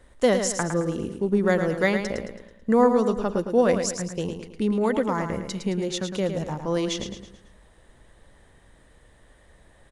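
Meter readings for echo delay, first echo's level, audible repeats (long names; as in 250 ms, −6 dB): 109 ms, −7.5 dB, 4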